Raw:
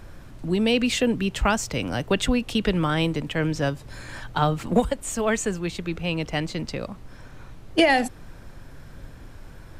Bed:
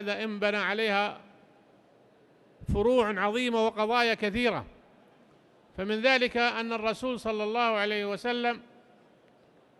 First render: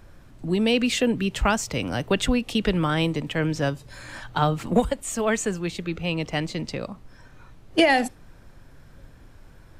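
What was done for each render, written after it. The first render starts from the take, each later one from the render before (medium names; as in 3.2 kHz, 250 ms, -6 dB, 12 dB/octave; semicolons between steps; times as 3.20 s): noise print and reduce 6 dB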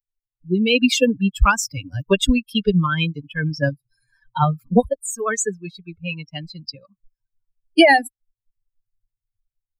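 expander on every frequency bin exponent 3; level rider gain up to 13 dB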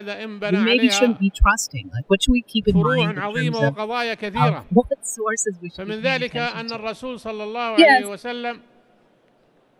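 add bed +1.5 dB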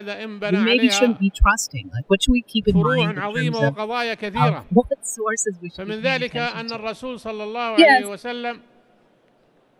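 no audible change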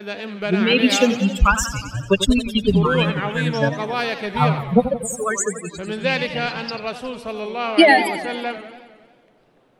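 modulated delay 90 ms, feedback 66%, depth 167 cents, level -11.5 dB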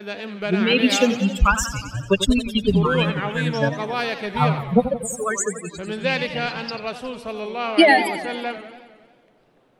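trim -1.5 dB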